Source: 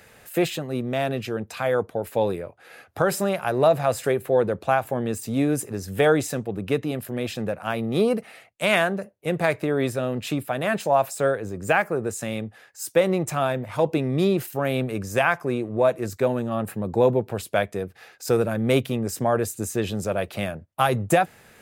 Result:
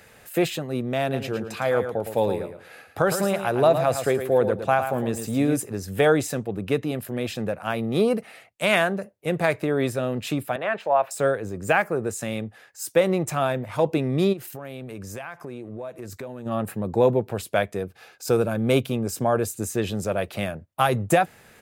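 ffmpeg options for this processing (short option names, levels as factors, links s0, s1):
-filter_complex "[0:a]asplit=3[s0][s1][s2];[s0]afade=t=out:st=1.12:d=0.02[s3];[s1]aecho=1:1:111|222|333:0.376|0.0752|0.015,afade=t=in:st=1.12:d=0.02,afade=t=out:st=5.56:d=0.02[s4];[s2]afade=t=in:st=5.56:d=0.02[s5];[s3][s4][s5]amix=inputs=3:normalize=0,asettb=1/sr,asplit=3[s6][s7][s8];[s6]atrim=end=10.564[s9];[s7]atrim=start=10.56:end=11.11,asetpts=PTS-STARTPTS,afade=t=in:d=0.004:c=qsin,afade=t=out:st=0.546:d=0.004:c=qsin,acrossover=split=390 3300:gain=0.2 1 0.0794[s10][s11][s12];[s10][s11][s12]amix=inputs=3:normalize=0[s13];[s8]atrim=start=11.106[s14];[s9][s13]acrossfade=d=0.004:c1=hsin:c2=qsin[s15];[s15][s14]acrossfade=d=0.004:c1=qsin:c2=hsin,asplit=3[s16][s17][s18];[s16]afade=t=out:st=14.32:d=0.02[s19];[s17]acompressor=threshold=0.0224:ratio=5:attack=3.2:release=140:knee=1:detection=peak,afade=t=in:st=14.32:d=0.02,afade=t=out:st=16.45:d=0.02[s20];[s18]afade=t=in:st=16.45:d=0.02[s21];[s19][s20][s21]amix=inputs=3:normalize=0,asettb=1/sr,asplit=3[s22][s23][s24];[s22]atrim=end=17.834[s25];[s23]atrim=start=17.83:end=19.54,asetpts=PTS-STARTPTS,afade=t=in:d=0.004:c=qsin,afade=t=out:st=1.706:d=0.004:c=qsin,bandreject=f=1900:w=6.7[s26];[s24]atrim=start=19.536[s27];[s25][s26]acrossfade=d=0.004:c1=hsin:c2=qsin[s28];[s28][s27]acrossfade=d=0.004:c1=qsin:c2=hsin"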